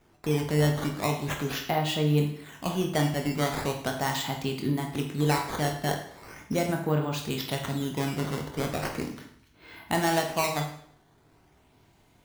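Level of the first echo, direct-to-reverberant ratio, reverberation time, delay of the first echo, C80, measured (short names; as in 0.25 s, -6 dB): none, 2.0 dB, 0.65 s, none, 10.0 dB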